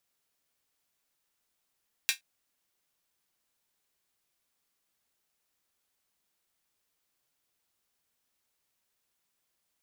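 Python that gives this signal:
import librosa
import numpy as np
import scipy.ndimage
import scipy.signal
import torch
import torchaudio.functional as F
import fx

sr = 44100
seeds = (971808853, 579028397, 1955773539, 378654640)

y = fx.drum_hat(sr, length_s=0.12, from_hz=2200.0, decay_s=0.14)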